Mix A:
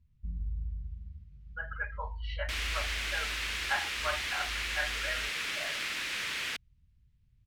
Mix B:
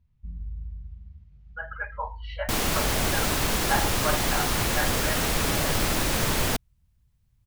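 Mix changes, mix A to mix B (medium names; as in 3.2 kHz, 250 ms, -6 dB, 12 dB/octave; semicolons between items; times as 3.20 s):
second sound: remove band-pass filter 2.3 kHz, Q 1.4; master: add peaking EQ 770 Hz +10 dB 1.3 oct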